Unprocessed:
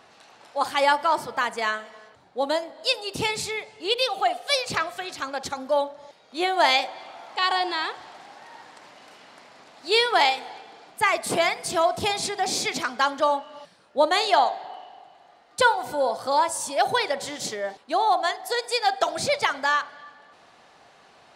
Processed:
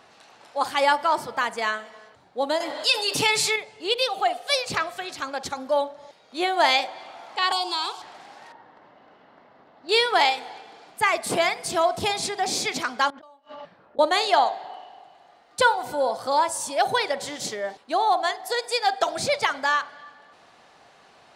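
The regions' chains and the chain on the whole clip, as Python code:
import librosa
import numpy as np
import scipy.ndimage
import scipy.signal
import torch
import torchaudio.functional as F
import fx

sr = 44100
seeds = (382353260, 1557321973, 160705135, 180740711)

y = fx.chain(x, sr, fx.low_shelf(hz=480.0, db=-11.5),
    fx.comb(ms=6.9, depth=0.82),
    fx.env_flatten(amount_pct=50), at=(2.6, 3.56))
y = fx.chain(y, sr, fx.tilt_eq(slope=3.0),
    fx.fixed_phaser(hz=370.0, stages=8),
    fx.band_squash(depth_pct=70), at=(7.52, 8.02))
y = fx.chain(y, sr, fx.spacing_loss(db_at_10k=40),
    fx.notch(hz=2400.0, q=9.2), at=(8.52, 9.89))
y = fx.chain(y, sr, fx.env_lowpass(base_hz=1300.0, full_db=-19.5),
    fx.gate_flip(shuts_db=-22.0, range_db=-34),
    fx.over_compress(threshold_db=-43.0, ratio=-1.0), at=(13.1, 13.99))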